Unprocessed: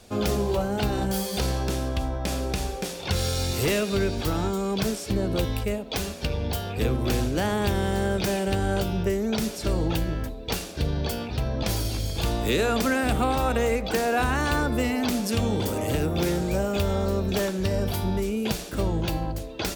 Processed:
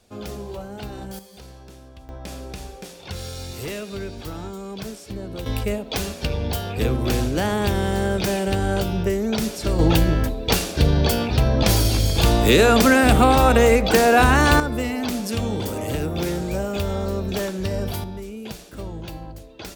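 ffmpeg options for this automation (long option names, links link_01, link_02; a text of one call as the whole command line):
ffmpeg -i in.wav -af "asetnsamples=nb_out_samples=441:pad=0,asendcmd='1.19 volume volume -17dB;2.09 volume volume -7dB;5.46 volume volume 3dB;9.79 volume volume 9dB;14.6 volume volume 0dB;18.04 volume volume -7.5dB',volume=-8.5dB" out.wav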